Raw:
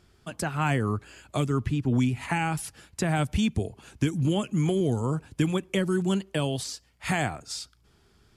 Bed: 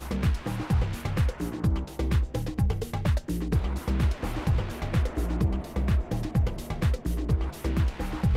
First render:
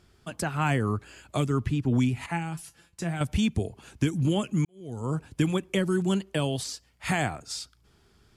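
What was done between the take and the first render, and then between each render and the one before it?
2.26–3.21 s: feedback comb 170 Hz, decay 0.16 s, mix 80%; 4.65–5.15 s: fade in quadratic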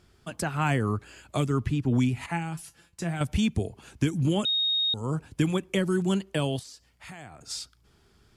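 4.45–4.94 s: bleep 3.73 kHz -22.5 dBFS; 6.59–7.41 s: compression 3:1, threshold -46 dBFS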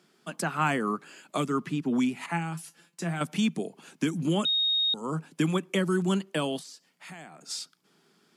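Chebyshev high-pass 160 Hz, order 5; dynamic bell 1.2 kHz, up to +5 dB, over -48 dBFS, Q 2.4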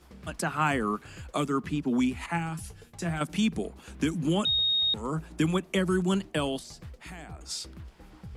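add bed -19.5 dB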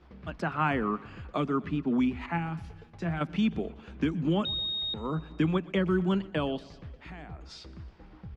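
distance through air 250 m; feedback delay 123 ms, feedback 59%, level -21.5 dB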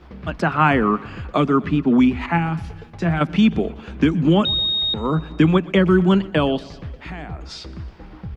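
trim +11.5 dB

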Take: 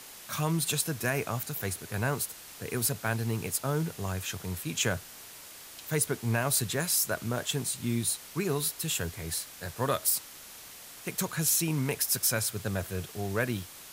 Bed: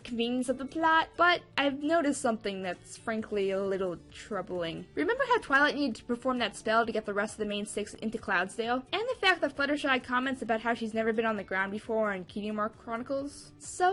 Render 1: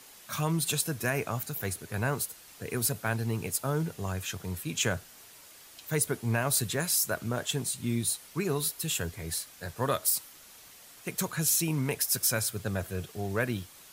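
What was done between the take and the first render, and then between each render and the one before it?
noise reduction 6 dB, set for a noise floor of -48 dBFS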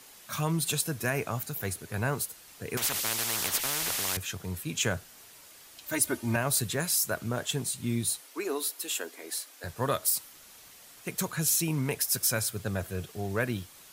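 2.77–4.17 s: spectrum-flattening compressor 10:1; 5.86–6.36 s: comb 3.3 ms, depth 88%; 8.21–9.64 s: elliptic high-pass 270 Hz, stop band 60 dB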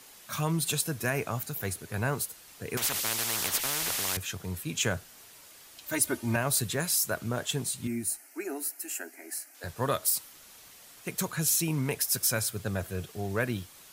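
7.87–9.55 s: static phaser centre 720 Hz, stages 8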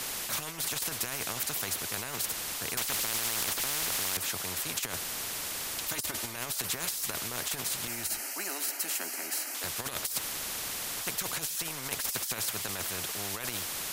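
compressor with a negative ratio -32 dBFS, ratio -0.5; spectrum-flattening compressor 4:1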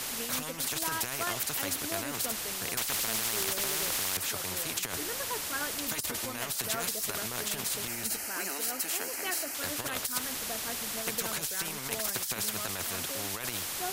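add bed -12.5 dB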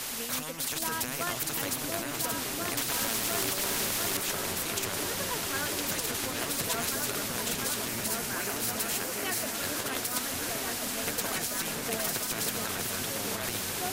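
delay with an opening low-pass 694 ms, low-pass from 400 Hz, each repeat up 2 oct, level 0 dB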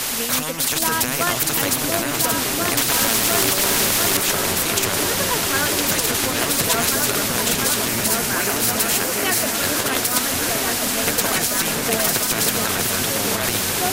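trim +12 dB

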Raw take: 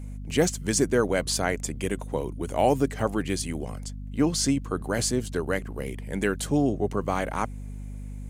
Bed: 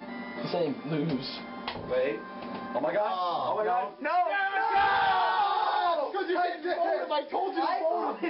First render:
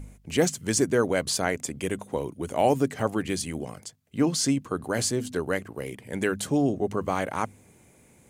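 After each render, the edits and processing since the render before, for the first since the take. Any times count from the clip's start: de-hum 50 Hz, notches 5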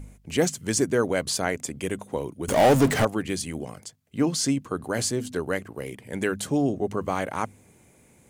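2.48–3.05 s: power-law waveshaper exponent 0.5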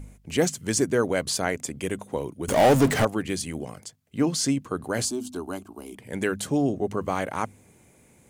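5.05–5.96 s: static phaser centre 500 Hz, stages 6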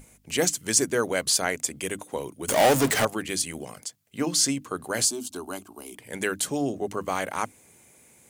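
tilt EQ +2 dB/octave; hum notches 50/100/150/200/250/300 Hz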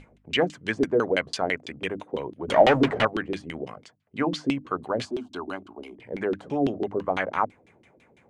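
LFO low-pass saw down 6 Hz 280–3700 Hz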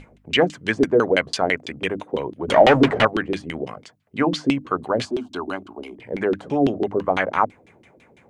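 trim +5.5 dB; peak limiter -2 dBFS, peak gain reduction 2.5 dB

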